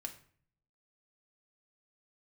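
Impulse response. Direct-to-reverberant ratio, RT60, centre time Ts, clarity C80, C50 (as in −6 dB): 3.0 dB, 0.50 s, 10 ms, 16.0 dB, 12.0 dB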